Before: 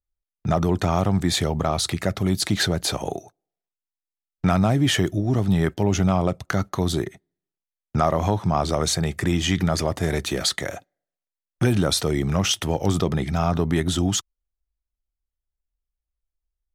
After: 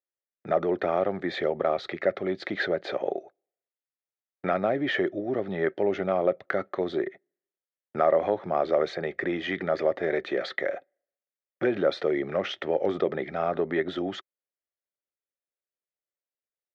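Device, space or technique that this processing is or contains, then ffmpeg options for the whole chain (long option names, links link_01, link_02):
phone earpiece: -af "highpass=370,equalizer=frequency=380:width_type=q:width=4:gain=6,equalizer=frequency=550:width_type=q:width=4:gain=9,equalizer=frequency=980:width_type=q:width=4:gain=-9,equalizer=frequency=1900:width_type=q:width=4:gain=5,equalizer=frequency=2800:width_type=q:width=4:gain=-8,lowpass=frequency=3000:width=0.5412,lowpass=frequency=3000:width=1.3066,volume=-3dB"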